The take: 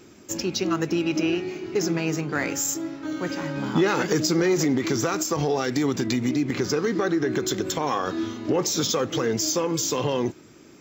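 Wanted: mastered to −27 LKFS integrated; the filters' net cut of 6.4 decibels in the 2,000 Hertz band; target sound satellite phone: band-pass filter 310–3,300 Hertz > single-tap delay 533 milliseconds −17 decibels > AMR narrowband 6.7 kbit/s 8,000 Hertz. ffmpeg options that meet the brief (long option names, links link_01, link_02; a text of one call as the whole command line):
ffmpeg -i in.wav -af "highpass=310,lowpass=3300,equalizer=frequency=2000:width_type=o:gain=-8,aecho=1:1:533:0.141,volume=2dB" -ar 8000 -c:a libopencore_amrnb -b:a 6700 out.amr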